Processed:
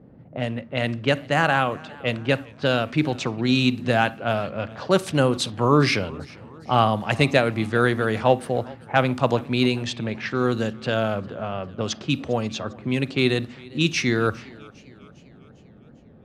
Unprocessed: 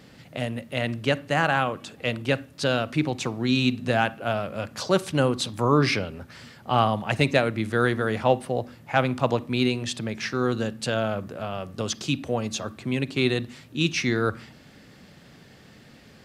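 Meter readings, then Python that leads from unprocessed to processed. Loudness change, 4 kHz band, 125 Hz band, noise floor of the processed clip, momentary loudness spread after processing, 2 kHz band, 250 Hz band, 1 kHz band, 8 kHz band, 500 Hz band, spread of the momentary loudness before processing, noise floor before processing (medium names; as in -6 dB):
+2.5 dB, +2.0 dB, +2.5 dB, -49 dBFS, 10 LU, +2.5 dB, +2.5 dB, +2.5 dB, -0.5 dB, +2.5 dB, 9 LU, -51 dBFS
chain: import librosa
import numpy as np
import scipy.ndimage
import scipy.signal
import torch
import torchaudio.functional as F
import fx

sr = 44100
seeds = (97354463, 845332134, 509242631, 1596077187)

y = fx.env_lowpass(x, sr, base_hz=530.0, full_db=-21.0)
y = fx.echo_warbled(y, sr, ms=402, feedback_pct=52, rate_hz=2.8, cents=103, wet_db=-23.0)
y = F.gain(torch.from_numpy(y), 2.5).numpy()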